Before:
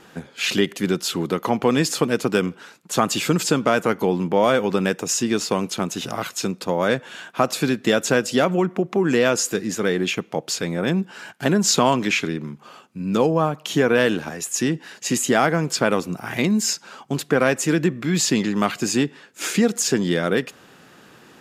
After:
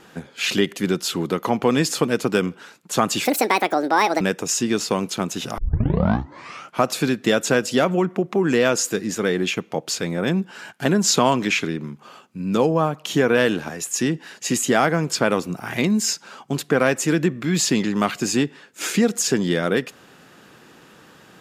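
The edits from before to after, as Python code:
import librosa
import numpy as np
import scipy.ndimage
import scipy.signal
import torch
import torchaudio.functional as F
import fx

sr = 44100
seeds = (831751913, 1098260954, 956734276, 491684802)

y = fx.edit(x, sr, fx.speed_span(start_s=3.25, length_s=1.56, speed=1.63),
    fx.tape_start(start_s=6.18, length_s=1.26), tone=tone)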